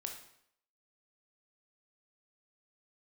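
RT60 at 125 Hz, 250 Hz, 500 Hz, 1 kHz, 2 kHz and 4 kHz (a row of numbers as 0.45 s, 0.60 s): 0.60 s, 0.65 s, 0.70 s, 0.70 s, 0.65 s, 0.65 s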